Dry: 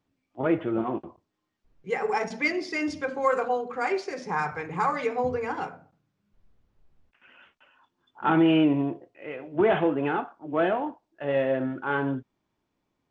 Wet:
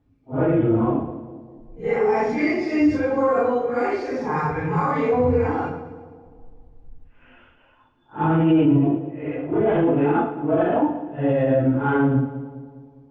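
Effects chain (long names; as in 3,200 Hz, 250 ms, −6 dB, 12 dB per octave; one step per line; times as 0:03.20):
random phases in long frames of 200 ms
spectral tilt −3.5 dB per octave
brickwall limiter −16.5 dBFS, peak gain reduction 13 dB
notch comb filter 190 Hz
on a send: echo with a time of its own for lows and highs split 830 Hz, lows 203 ms, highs 114 ms, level −13 dB
on the sum: level +6 dB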